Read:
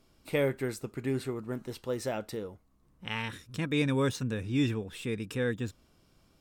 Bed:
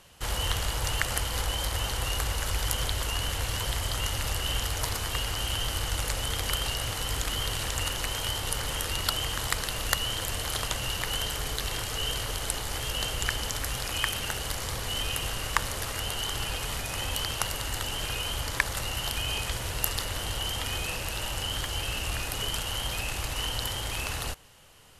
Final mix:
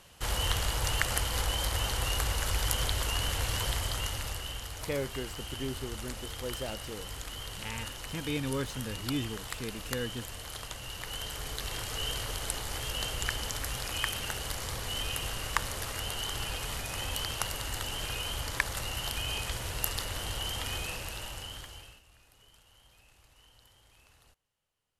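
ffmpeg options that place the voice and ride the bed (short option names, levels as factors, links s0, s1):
-filter_complex "[0:a]adelay=4550,volume=0.531[s0];[1:a]volume=2,afade=t=out:st=3.65:d=0.92:silence=0.334965,afade=t=in:st=10.85:d=1.14:silence=0.446684,afade=t=out:st=20.74:d=1.28:silence=0.0501187[s1];[s0][s1]amix=inputs=2:normalize=0"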